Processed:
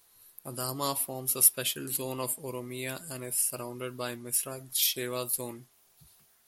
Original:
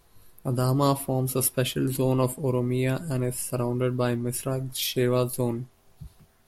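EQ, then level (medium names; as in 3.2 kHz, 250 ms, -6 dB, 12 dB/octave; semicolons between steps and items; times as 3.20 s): tilt EQ +3.5 dB/octave; -7.0 dB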